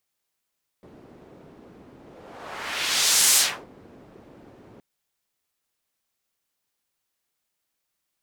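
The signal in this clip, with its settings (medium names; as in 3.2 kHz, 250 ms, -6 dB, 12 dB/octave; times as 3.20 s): whoosh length 3.97 s, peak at 2.53 s, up 1.43 s, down 0.33 s, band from 320 Hz, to 7.8 kHz, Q 1, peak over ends 32 dB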